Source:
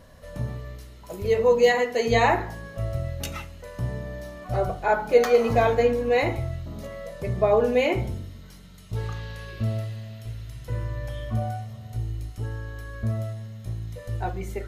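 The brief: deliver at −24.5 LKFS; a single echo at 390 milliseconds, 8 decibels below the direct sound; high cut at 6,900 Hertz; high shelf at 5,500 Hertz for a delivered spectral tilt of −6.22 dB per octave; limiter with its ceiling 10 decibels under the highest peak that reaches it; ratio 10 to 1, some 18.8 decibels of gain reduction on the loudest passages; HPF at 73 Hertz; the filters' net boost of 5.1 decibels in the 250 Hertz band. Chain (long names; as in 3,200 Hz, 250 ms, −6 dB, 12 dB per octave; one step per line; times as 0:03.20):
high-pass filter 73 Hz
low-pass filter 6,900 Hz
parametric band 250 Hz +6 dB
high-shelf EQ 5,500 Hz +5.5 dB
downward compressor 10 to 1, threshold −31 dBFS
brickwall limiter −31 dBFS
single-tap delay 390 ms −8 dB
level +14.5 dB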